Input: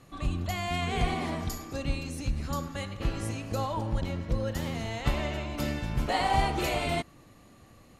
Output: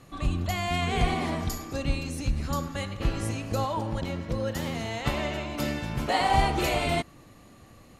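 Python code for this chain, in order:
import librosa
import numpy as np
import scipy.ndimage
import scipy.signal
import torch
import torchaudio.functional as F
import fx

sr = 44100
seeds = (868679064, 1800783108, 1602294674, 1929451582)

y = fx.highpass(x, sr, hz=120.0, slope=6, at=(3.64, 6.29))
y = y * librosa.db_to_amplitude(3.0)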